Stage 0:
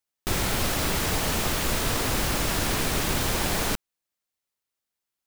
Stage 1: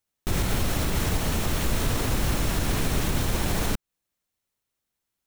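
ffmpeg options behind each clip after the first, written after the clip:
-af "alimiter=limit=-22dB:level=0:latency=1:release=194,lowshelf=f=280:g=9,bandreject=f=4.8k:w=21,volume=2.5dB"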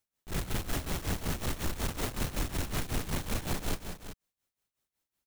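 -af "asoftclip=type=tanh:threshold=-27dB,tremolo=f=5.4:d=0.82,aecho=1:1:184|381:0.355|0.299"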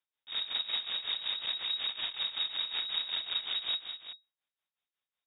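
-af "lowpass=f=3.2k:t=q:w=0.5098,lowpass=f=3.2k:t=q:w=0.6013,lowpass=f=3.2k:t=q:w=0.9,lowpass=f=3.2k:t=q:w=2.563,afreqshift=-3800,volume=-2.5dB"

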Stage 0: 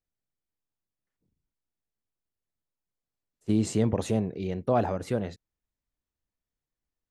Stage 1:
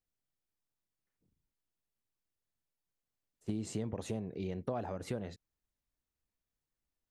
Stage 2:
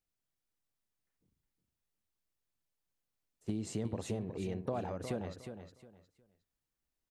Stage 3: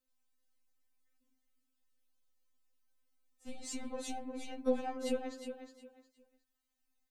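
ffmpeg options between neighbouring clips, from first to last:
-af "acompressor=threshold=-33dB:ratio=5,volume=-1.5dB"
-af "aecho=1:1:360|720|1080:0.376|0.094|0.0235"
-af "aeval=exprs='0.0841*(cos(1*acos(clip(val(0)/0.0841,-1,1)))-cos(1*PI/2))+0.00668*(cos(4*acos(clip(val(0)/0.0841,-1,1)))-cos(4*PI/2))':c=same,afftfilt=real='re*3.46*eq(mod(b,12),0)':imag='im*3.46*eq(mod(b,12),0)':win_size=2048:overlap=0.75,volume=5dB"

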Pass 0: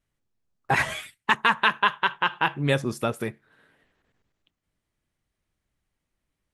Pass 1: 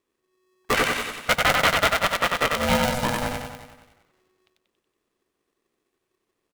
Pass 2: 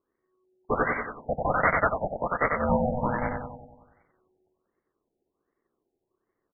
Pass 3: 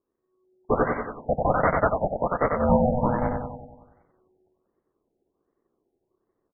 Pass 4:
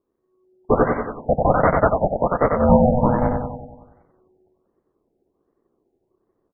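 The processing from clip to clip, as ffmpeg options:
-filter_complex "[0:a]asplit=2[a][b];[b]aecho=0:1:93|186|279|372|465|558|651|744:0.708|0.411|0.238|0.138|0.0801|0.0465|0.027|0.0156[c];[a][c]amix=inputs=2:normalize=0,aeval=exprs='val(0)*sgn(sin(2*PI*370*n/s))':c=same"
-af "afftfilt=real='re*lt(b*sr/1024,840*pow(2300/840,0.5+0.5*sin(2*PI*1.3*pts/sr)))':imag='im*lt(b*sr/1024,840*pow(2300/840,0.5+0.5*sin(2*PI*1.3*pts/sr)))':win_size=1024:overlap=0.75,volume=-1.5dB"
-af "lowpass=1k,dynaudnorm=f=270:g=3:m=5dB"
-af "highshelf=f=2.1k:g=-11.5,volume=6.5dB"

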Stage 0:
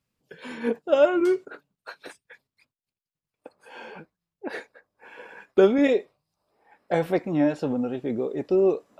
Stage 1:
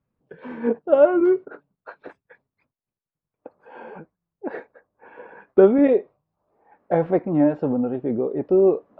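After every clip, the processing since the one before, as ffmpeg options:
-af "lowpass=1.2k,volume=4dB"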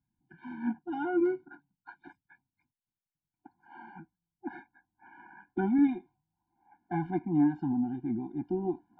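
-af "afftfilt=real='re*eq(mod(floor(b*sr/1024/350),2),0)':imag='im*eq(mod(floor(b*sr/1024/350),2),0)':win_size=1024:overlap=0.75,volume=-6dB"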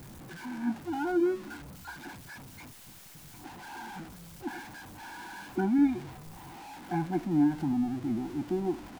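-filter_complex "[0:a]aeval=exprs='val(0)+0.5*0.00944*sgn(val(0))':c=same,asplit=5[a][b][c][d][e];[b]adelay=221,afreqshift=-140,volume=-23.5dB[f];[c]adelay=442,afreqshift=-280,volume=-28.7dB[g];[d]adelay=663,afreqshift=-420,volume=-33.9dB[h];[e]adelay=884,afreqshift=-560,volume=-39.1dB[i];[a][f][g][h][i]amix=inputs=5:normalize=0"

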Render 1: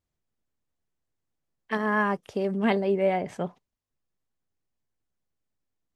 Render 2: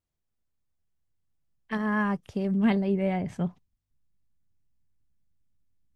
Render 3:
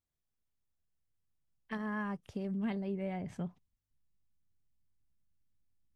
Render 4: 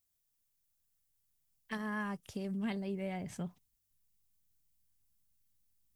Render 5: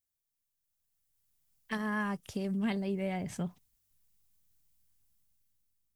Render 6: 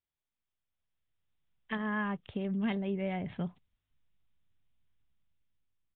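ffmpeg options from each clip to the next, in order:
-af "asubboost=boost=7.5:cutoff=190,volume=-3.5dB"
-af "acompressor=threshold=-32dB:ratio=2,volume=-5.5dB"
-af "crystalizer=i=3.5:c=0,volume=-1.5dB"
-af "dynaudnorm=f=310:g=7:m=11dB,volume=-6.5dB"
-af "aresample=8000,aresample=44100"

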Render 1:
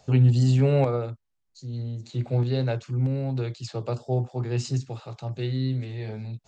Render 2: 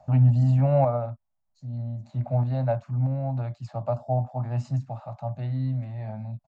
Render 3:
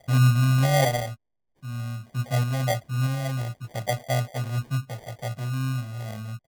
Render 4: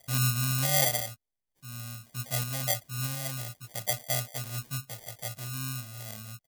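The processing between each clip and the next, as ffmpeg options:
-af "firequalizer=gain_entry='entry(230,0);entry(420,-24);entry(600,9);entry(1400,-4);entry(3300,-17)':delay=0.05:min_phase=1"
-af "acrusher=samples=33:mix=1:aa=0.000001"
-af "crystalizer=i=6:c=0,volume=-10.5dB"

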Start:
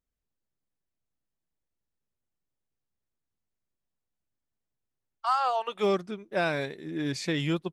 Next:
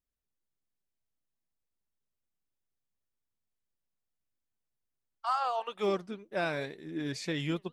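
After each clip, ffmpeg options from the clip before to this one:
-af "flanger=delay=1:depth=4.4:regen=85:speed=1.9:shape=triangular"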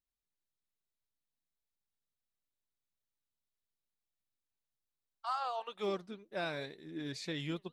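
-af "equalizer=f=3.9k:w=4.2:g=7,volume=-6dB"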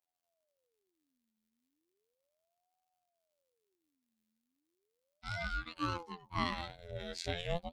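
-af "asuperstop=centerf=1100:order=20:qfactor=2.3,afftfilt=real='hypot(re,im)*cos(PI*b)':imag='0':win_size=2048:overlap=0.75,aeval=exprs='val(0)*sin(2*PI*480*n/s+480*0.55/0.35*sin(2*PI*0.35*n/s))':c=same,volume=8dB"

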